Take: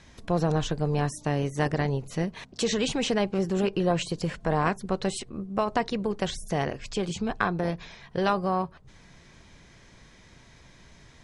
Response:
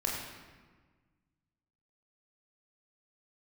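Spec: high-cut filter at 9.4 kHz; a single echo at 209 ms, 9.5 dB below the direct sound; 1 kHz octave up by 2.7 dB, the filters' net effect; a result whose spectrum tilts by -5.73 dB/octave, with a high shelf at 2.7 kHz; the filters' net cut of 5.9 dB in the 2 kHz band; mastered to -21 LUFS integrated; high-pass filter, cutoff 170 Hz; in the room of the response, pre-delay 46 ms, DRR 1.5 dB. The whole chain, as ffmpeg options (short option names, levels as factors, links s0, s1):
-filter_complex "[0:a]highpass=170,lowpass=9400,equalizer=f=1000:t=o:g=6,equalizer=f=2000:t=o:g=-9,highshelf=f=2700:g=-4,aecho=1:1:209:0.335,asplit=2[s0][s1];[1:a]atrim=start_sample=2205,adelay=46[s2];[s1][s2]afir=irnorm=-1:irlink=0,volume=0.422[s3];[s0][s3]amix=inputs=2:normalize=0,volume=1.78"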